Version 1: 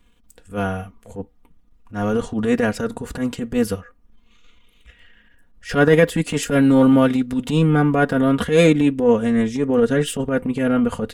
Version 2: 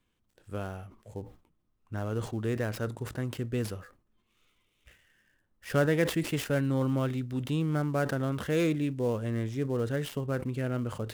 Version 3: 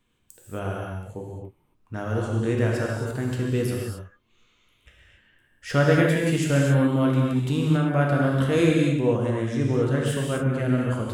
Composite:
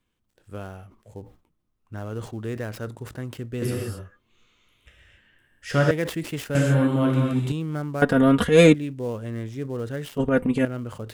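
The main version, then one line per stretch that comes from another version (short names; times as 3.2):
2
3.62–5.91 from 3
6.55–7.52 from 3
8.02–8.74 from 1
10.18–10.65 from 1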